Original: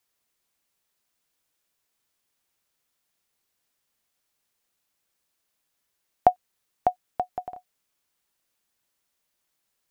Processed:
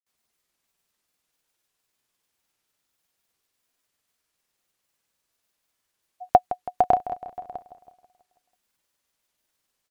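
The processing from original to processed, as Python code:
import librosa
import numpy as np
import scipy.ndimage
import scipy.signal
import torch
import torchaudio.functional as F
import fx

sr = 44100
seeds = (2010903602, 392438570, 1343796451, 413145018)

y = fx.granulator(x, sr, seeds[0], grain_ms=100.0, per_s=20.0, spray_ms=100.0, spread_st=0)
y = fx.echo_feedback(y, sr, ms=163, feedback_pct=56, wet_db=-14.0)
y = y * 10.0 ** (2.5 / 20.0)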